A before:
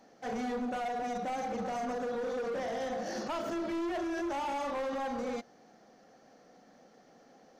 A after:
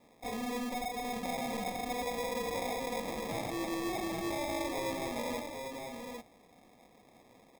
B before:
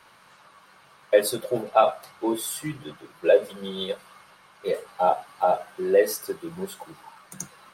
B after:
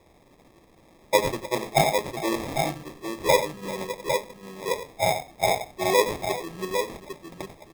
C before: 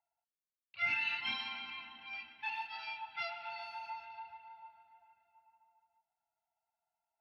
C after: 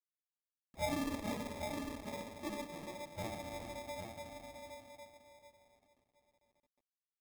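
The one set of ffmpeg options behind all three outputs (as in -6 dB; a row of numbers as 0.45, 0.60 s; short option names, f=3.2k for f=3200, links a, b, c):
-af "acrusher=bits=11:mix=0:aa=0.000001,aecho=1:1:92|395|805:0.282|0.168|0.531,acrusher=samples=30:mix=1:aa=0.000001,volume=-2.5dB"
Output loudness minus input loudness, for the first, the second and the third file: -1.5, -1.0, -4.5 LU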